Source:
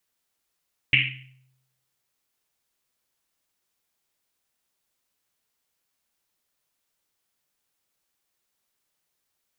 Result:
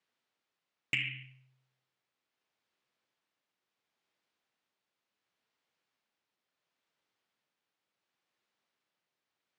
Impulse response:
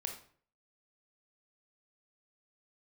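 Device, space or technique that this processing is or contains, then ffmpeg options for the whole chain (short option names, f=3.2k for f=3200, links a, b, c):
AM radio: -af "highpass=140,lowpass=3.6k,acompressor=threshold=-25dB:ratio=6,asoftclip=type=tanh:threshold=-15.5dB,tremolo=f=0.71:d=0.3"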